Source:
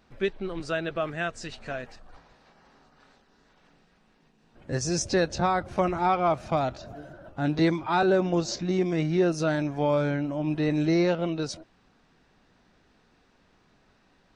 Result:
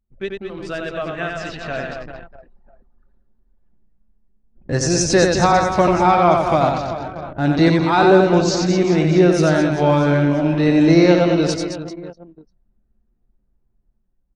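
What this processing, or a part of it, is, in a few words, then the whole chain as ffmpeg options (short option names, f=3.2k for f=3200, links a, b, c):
voice memo with heavy noise removal: -filter_complex "[0:a]asettb=1/sr,asplit=3[a][b][c];[a]atrim=end=1.014[d];[b]atrim=start=1.01:end=1.82,asetpts=PTS-STARTPTS,afade=t=in:d=0.004:c=qsin,afade=t=out:st=0.806:d=0.004:c=qsin,lowpass=5.7k[e];[c]atrim=start=1.816[f];[d][e]acrossfade=d=0.004:c1=hsin:c2=qsin[g];[g][f]acrossfade=d=0.004:c1=qsin:c2=hsin,aecho=1:1:90|216|392.4|639.4|985.1:0.631|0.398|0.251|0.158|0.1,anlmdn=0.158,dynaudnorm=f=350:g=11:m=14dB"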